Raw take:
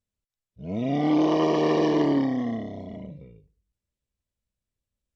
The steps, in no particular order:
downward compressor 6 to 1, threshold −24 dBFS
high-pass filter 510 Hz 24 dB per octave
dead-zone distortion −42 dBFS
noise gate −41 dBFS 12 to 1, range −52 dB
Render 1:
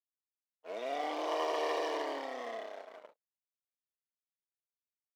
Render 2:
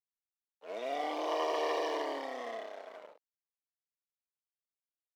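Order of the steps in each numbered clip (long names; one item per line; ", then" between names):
downward compressor, then dead-zone distortion, then noise gate, then high-pass filter
noise gate, then dead-zone distortion, then downward compressor, then high-pass filter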